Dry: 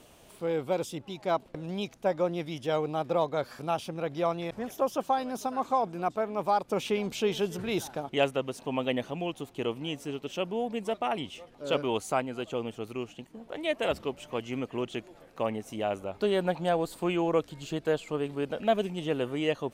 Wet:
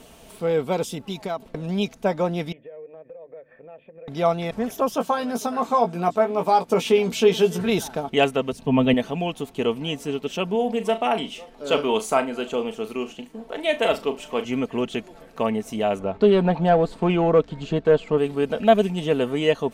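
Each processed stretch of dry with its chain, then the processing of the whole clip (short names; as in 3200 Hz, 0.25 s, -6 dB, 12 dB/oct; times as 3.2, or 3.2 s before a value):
0.92–1.42 high shelf 8000 Hz +8 dB + compressor, threshold -32 dBFS
2.52–4.08 vocal tract filter e + notches 50/100/150/200/250/300/350 Hz + compressor 4:1, threshold -48 dBFS
4.95–7.7 HPF 120 Hz 6 dB/oct + doubler 17 ms -6 dB
8.52–8.94 tone controls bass +12 dB, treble -5 dB + three-band expander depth 40%
10.55–14.45 bell 94 Hz -14 dB 1.3 oct + flutter echo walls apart 6.3 m, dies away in 0.21 s
15.99–18.18 sample leveller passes 1 + tape spacing loss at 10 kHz 21 dB
whole clip: low shelf 210 Hz +3 dB; comb 4.5 ms, depth 44%; gain +6.5 dB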